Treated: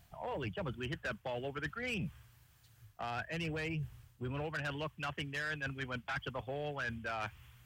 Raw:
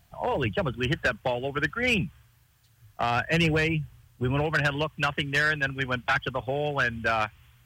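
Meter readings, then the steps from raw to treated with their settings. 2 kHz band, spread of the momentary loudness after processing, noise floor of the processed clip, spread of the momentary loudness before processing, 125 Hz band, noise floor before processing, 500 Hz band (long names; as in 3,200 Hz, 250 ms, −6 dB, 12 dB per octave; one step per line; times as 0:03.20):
−14.0 dB, 5 LU, −66 dBFS, 7 LU, −12.0 dB, −62 dBFS, −12.5 dB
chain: reversed playback
downward compressor, threshold −33 dBFS, peak gain reduction 13 dB
reversed playback
soft clipping −28.5 dBFS, distortion −19 dB
level −2 dB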